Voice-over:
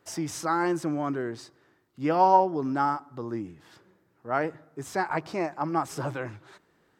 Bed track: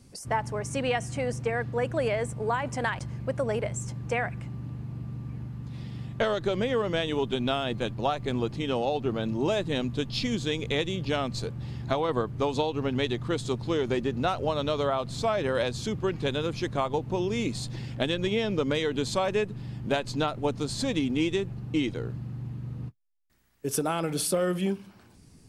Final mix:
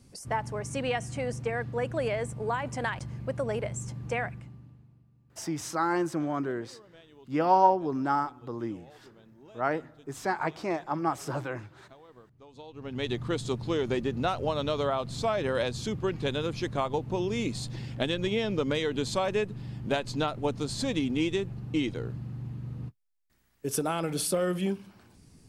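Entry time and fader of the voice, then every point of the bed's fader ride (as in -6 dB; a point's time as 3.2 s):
5.30 s, -1.5 dB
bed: 4.24 s -2.5 dB
5.1 s -26.5 dB
12.44 s -26.5 dB
13.11 s -1.5 dB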